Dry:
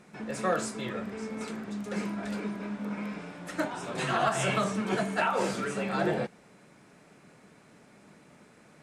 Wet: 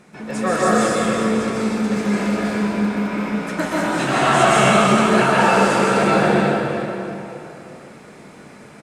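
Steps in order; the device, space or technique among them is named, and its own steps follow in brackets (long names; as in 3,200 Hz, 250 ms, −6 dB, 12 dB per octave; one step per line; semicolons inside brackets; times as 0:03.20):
cave (single-tap delay 359 ms −11.5 dB; convolution reverb RT60 3.0 s, pre-delay 120 ms, DRR −7.5 dB)
level +6 dB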